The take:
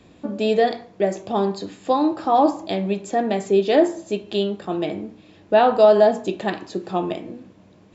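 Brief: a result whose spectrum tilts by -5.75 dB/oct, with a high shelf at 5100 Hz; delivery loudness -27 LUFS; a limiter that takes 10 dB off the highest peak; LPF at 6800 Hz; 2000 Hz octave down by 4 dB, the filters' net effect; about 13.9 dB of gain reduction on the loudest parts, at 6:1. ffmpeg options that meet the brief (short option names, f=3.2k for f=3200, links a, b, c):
-af "lowpass=6.8k,equalizer=f=2k:t=o:g=-4,highshelf=f=5.1k:g=-7,acompressor=threshold=-25dB:ratio=6,volume=7.5dB,alimiter=limit=-17dB:level=0:latency=1"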